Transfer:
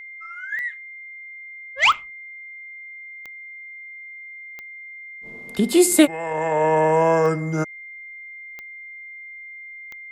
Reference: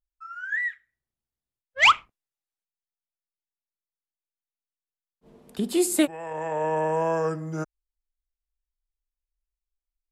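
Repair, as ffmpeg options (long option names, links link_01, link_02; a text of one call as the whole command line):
ffmpeg -i in.wav -af "adeclick=threshold=4,bandreject=frequency=2100:width=30,asetnsamples=nb_out_samples=441:pad=0,asendcmd='3.12 volume volume -7.5dB',volume=0dB" out.wav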